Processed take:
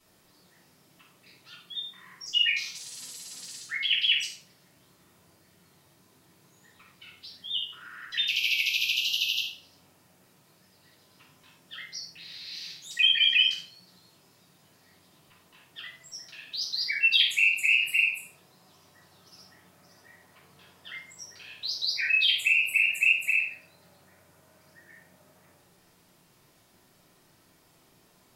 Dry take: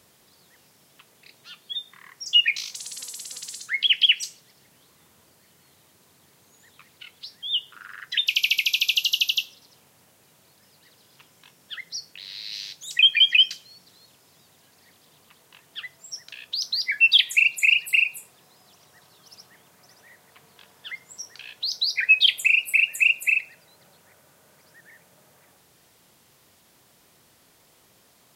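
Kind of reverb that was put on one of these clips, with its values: shoebox room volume 680 m³, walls furnished, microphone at 9.9 m; gain -15 dB

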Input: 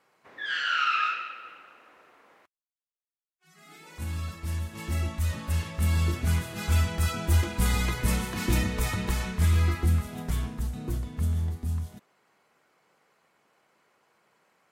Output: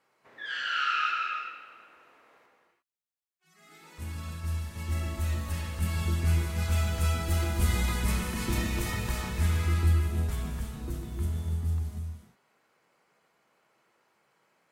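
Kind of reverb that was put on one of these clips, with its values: non-linear reverb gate 0.38 s flat, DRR 0.5 dB; gain -5 dB

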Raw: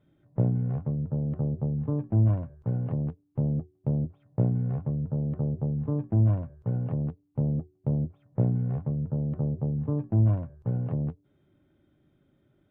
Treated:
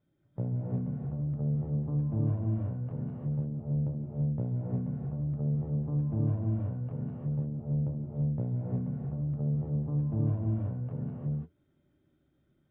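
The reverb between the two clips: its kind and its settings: non-linear reverb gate 0.37 s rising, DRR -3 dB; gain -10 dB

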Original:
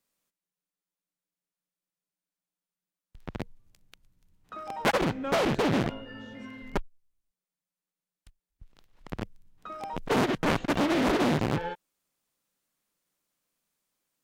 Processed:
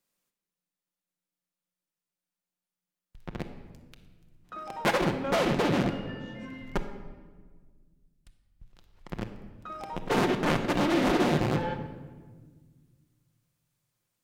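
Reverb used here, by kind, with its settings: shoebox room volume 1500 m³, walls mixed, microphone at 0.89 m; gain -1 dB

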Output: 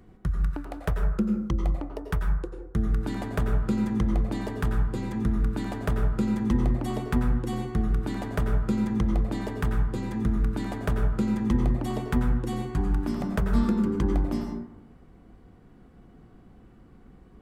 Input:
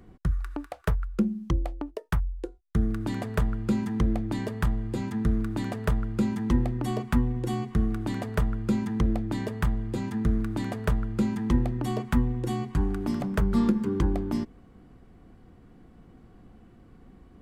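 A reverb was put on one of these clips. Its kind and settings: plate-style reverb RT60 0.84 s, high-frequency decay 0.35×, pre-delay 80 ms, DRR 3 dB; gain -1.5 dB

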